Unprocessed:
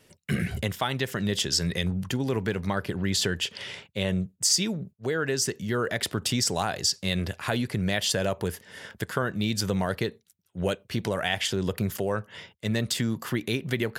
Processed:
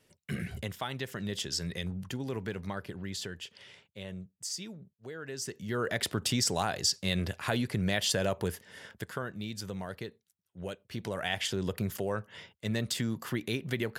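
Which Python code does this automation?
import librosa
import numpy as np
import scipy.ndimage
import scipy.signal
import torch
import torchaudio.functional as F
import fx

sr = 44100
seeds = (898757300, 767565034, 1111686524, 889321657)

y = fx.gain(x, sr, db=fx.line((2.61, -8.5), (3.53, -15.0), (5.2, -15.0), (5.9, -3.0), (8.48, -3.0), (9.52, -12.0), (10.73, -12.0), (11.33, -5.0)))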